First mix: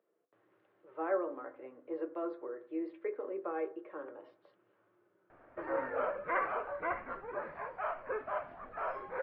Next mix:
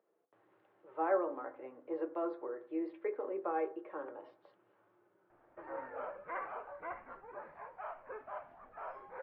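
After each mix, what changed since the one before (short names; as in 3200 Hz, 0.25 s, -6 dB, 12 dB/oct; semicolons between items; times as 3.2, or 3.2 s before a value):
background -10.0 dB; master: add bell 840 Hz +6.5 dB 0.48 oct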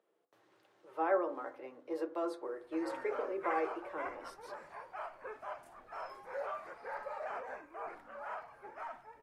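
background: entry -2.85 s; master: remove Gaussian blur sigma 3.5 samples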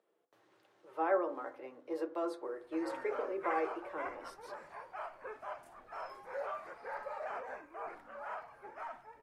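none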